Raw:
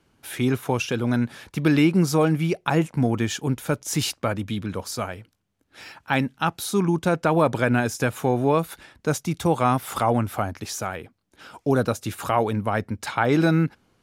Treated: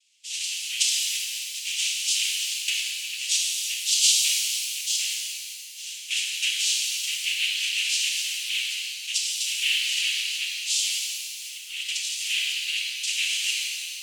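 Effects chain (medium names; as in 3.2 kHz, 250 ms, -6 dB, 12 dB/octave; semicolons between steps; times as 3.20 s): noise-vocoded speech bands 4; in parallel at +2 dB: peak limiter -13.5 dBFS, peak gain reduction 7.5 dB; on the sum: elliptic high-pass 2.8 kHz, stop band 70 dB; pitch-shifted reverb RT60 2.3 s, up +7 st, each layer -8 dB, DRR -3 dB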